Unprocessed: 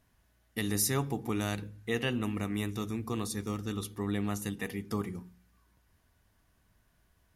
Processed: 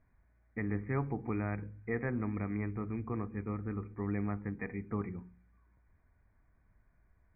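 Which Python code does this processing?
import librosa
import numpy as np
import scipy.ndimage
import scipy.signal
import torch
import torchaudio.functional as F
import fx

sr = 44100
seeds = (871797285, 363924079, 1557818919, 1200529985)

y = fx.brickwall_lowpass(x, sr, high_hz=2500.0)
y = fx.low_shelf(y, sr, hz=68.0, db=9.5)
y = y * 10.0 ** (-3.5 / 20.0)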